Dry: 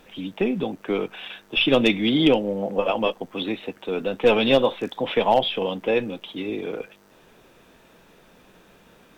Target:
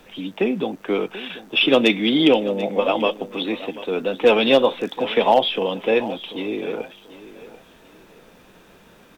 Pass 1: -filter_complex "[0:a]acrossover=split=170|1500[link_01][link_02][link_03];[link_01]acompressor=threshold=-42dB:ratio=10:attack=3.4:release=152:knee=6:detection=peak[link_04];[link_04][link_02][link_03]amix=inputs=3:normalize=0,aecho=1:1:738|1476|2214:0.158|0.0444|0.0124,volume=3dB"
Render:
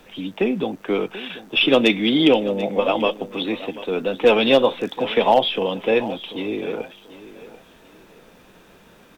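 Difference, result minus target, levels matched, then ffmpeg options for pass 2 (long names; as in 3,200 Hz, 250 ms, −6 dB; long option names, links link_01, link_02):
downward compressor: peak gain reduction −7.5 dB
-filter_complex "[0:a]acrossover=split=170|1500[link_01][link_02][link_03];[link_01]acompressor=threshold=-50.5dB:ratio=10:attack=3.4:release=152:knee=6:detection=peak[link_04];[link_04][link_02][link_03]amix=inputs=3:normalize=0,aecho=1:1:738|1476|2214:0.158|0.0444|0.0124,volume=3dB"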